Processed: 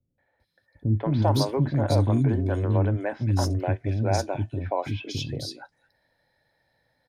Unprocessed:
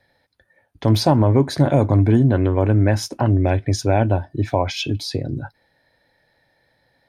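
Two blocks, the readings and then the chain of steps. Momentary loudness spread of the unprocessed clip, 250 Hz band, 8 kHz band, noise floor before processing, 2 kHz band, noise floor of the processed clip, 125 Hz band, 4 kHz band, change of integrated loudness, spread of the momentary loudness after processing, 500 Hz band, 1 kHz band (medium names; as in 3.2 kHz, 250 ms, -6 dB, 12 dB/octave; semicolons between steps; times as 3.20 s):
9 LU, -8.0 dB, -6.0 dB, -65 dBFS, -7.5 dB, -75 dBFS, -6.0 dB, -7.0 dB, -7.0 dB, 9 LU, -7.5 dB, -6.5 dB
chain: three bands offset in time lows, mids, highs 180/400 ms, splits 330/2700 Hz; trim -6 dB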